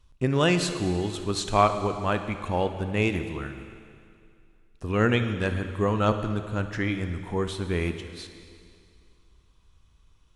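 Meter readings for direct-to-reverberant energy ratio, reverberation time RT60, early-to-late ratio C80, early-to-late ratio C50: 8.5 dB, 2.3 s, 10.5 dB, 8.5 dB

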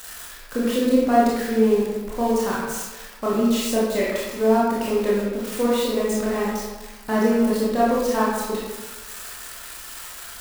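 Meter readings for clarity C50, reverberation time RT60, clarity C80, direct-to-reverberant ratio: -1.5 dB, 1.3 s, 2.0 dB, -7.5 dB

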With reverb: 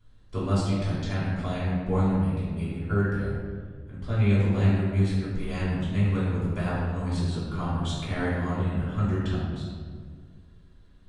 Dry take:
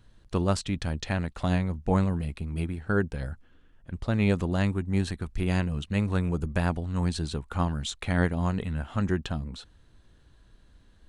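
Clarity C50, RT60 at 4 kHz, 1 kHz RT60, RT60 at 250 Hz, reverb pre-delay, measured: -1.5 dB, 1.0 s, 1.6 s, 2.3 s, 3 ms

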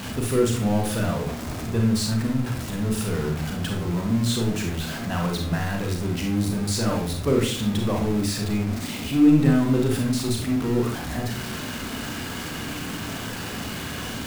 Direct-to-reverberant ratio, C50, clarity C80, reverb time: 1.0 dB, 4.5 dB, 10.0 dB, 0.50 s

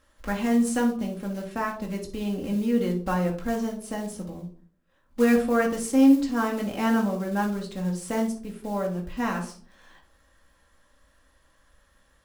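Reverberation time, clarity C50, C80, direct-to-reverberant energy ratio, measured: 0.50 s, 9.0 dB, 14.5 dB, 0.0 dB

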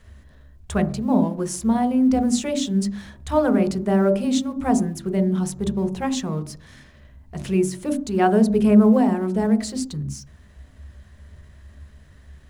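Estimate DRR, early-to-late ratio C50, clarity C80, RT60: 6.5 dB, 13.5 dB, 16.5 dB, 0.50 s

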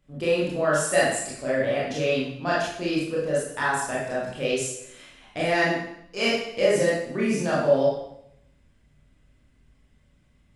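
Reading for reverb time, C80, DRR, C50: 0.75 s, 5.0 dB, -7.5 dB, 0.5 dB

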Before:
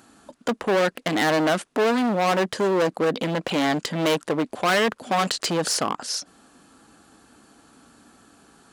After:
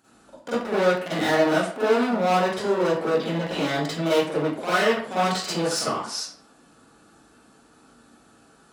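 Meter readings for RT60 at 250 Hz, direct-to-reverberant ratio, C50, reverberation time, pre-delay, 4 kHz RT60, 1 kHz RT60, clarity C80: 0.50 s, -11.0 dB, -4.0 dB, 0.55 s, 39 ms, 0.35 s, 0.55 s, 4.5 dB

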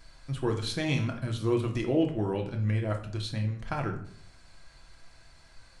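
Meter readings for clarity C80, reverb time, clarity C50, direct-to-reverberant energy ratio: 13.5 dB, 0.60 s, 9.5 dB, 2.5 dB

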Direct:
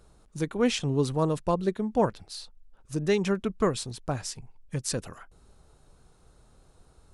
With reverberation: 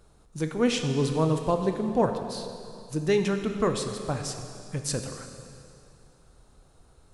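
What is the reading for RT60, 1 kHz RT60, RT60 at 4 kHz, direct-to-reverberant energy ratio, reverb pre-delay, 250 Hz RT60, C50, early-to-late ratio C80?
2.5 s, 2.6 s, 2.4 s, 5.5 dB, 7 ms, 2.6 s, 6.5 dB, 7.5 dB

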